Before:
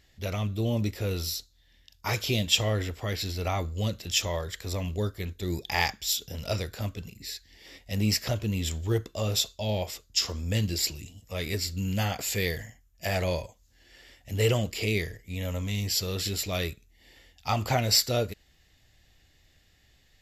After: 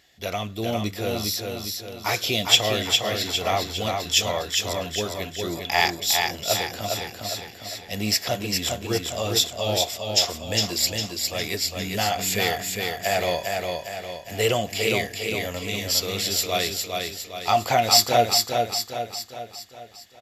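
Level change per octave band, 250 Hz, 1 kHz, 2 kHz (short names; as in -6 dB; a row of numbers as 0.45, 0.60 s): +1.5, +10.5, +7.0 dB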